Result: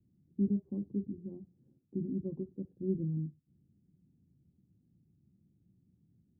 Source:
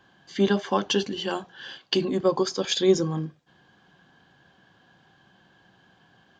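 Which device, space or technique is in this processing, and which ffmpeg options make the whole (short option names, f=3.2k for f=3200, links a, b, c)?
the neighbour's flat through the wall: -af "lowpass=f=270:w=0.5412,lowpass=f=270:w=1.3066,equalizer=f=82:t=o:w=0.96:g=7,volume=-6dB"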